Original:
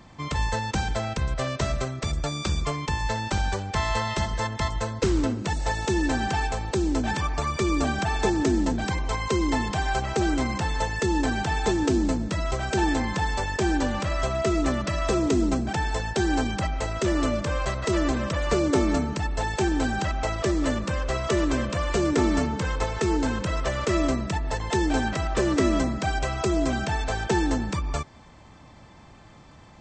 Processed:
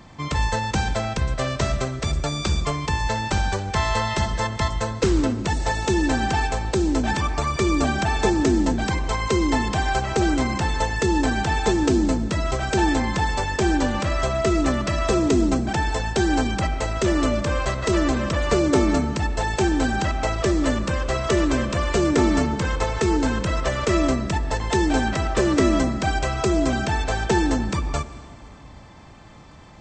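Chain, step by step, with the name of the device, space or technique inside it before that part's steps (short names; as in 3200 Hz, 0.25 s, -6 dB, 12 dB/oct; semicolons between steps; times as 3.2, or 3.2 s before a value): compressed reverb return (on a send at -12 dB: reverb RT60 2.0 s, pre-delay 14 ms + compressor, threshold -24 dBFS, peak gain reduction 8.5 dB); on the sum: gain +3.5 dB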